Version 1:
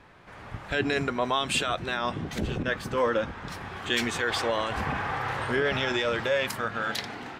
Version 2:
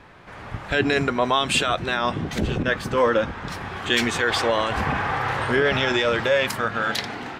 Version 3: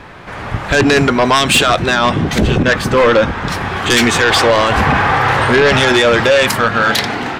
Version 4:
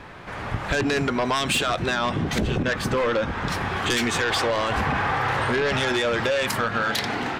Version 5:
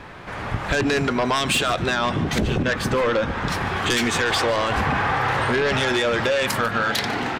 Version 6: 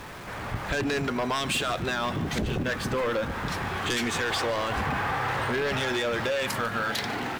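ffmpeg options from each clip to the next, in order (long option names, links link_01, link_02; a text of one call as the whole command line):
ffmpeg -i in.wav -af "highshelf=frequency=9600:gain=-3.5,volume=6dB" out.wav
ffmpeg -i in.wav -af "aeval=exprs='0.531*sin(PI/2*2.82*val(0)/0.531)':channel_layout=same" out.wav
ffmpeg -i in.wav -af "acompressor=threshold=-14dB:ratio=6,volume=-6.5dB" out.wav
ffmpeg -i in.wav -af "aecho=1:1:147:0.119,volume=2dB" out.wav
ffmpeg -i in.wav -af "aeval=exprs='val(0)+0.5*0.0237*sgn(val(0))':channel_layout=same,volume=-7.5dB" out.wav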